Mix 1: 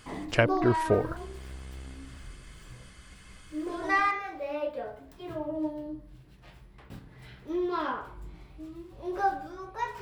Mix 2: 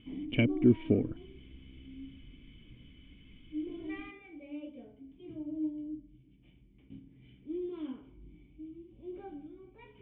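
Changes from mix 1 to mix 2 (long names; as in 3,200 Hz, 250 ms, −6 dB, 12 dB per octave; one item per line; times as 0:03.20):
speech +10.0 dB
first sound +3.0 dB
master: add formant resonators in series i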